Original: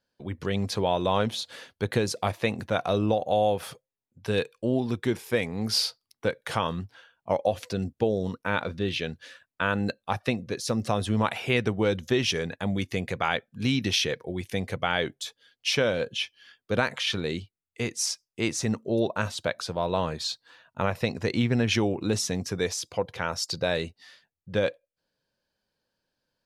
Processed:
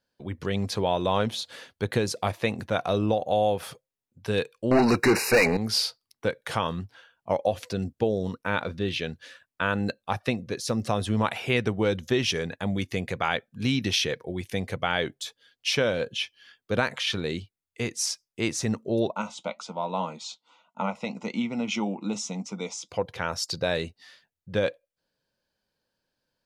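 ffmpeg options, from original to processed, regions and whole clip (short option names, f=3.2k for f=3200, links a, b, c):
-filter_complex "[0:a]asettb=1/sr,asplit=3[a][b][c];[a]atrim=end=4.714[d];[b]atrim=start=4.71:end=5.57,asetpts=PTS-STARTPTS,afade=t=in:d=0.004:c=qsin,afade=t=out:st=0.856:d=0.004:c=qsin,asplit=2[e][f];[f]highpass=f=720:p=1,volume=29dB,asoftclip=type=tanh:threshold=-11dB[g];[e][g]amix=inputs=2:normalize=0,lowpass=f=4.5k:p=1,volume=-6dB,asuperstop=centerf=3300:order=20:qfactor=3.4[h];[c]atrim=start=5.566[i];[d][h]acrossfade=d=0.004:c1=hsin:c2=qsin[j];[j][i]acrossfade=d=0.004:c1=qsin:c2=hsin,asettb=1/sr,asplit=3[k][l][m];[k]atrim=end=19.124[n];[l]atrim=start=19.12:end=22.89,asetpts=PTS-STARTPTS,afade=t=in:d=0.004:c=qsin,afade=t=out:st=3.766:d=0.004:c=qsin,flanger=delay=4.4:depth=2.7:regen=-68:speed=1.8:shape=triangular,asuperstop=centerf=1700:order=8:qfactor=3.3,highpass=f=190:w=0.5412,highpass=f=190:w=1.3066,equalizer=f=200:t=q:w=4:g=9,equalizer=f=390:t=q:w=4:g=-9,equalizer=f=890:t=q:w=4:g=8,equalizer=f=1.7k:t=q:w=4:g=6,equalizer=f=4.4k:t=q:w=4:g=-7,equalizer=f=6.9k:t=q:w=4:g=4,lowpass=f=7.8k:w=0.5412,lowpass=f=7.8k:w=1.3066[o];[m]atrim=start=22.886[p];[n][o]acrossfade=d=0.004:c1=hsin:c2=qsin[q];[q][p]acrossfade=d=0.004:c1=qsin:c2=hsin"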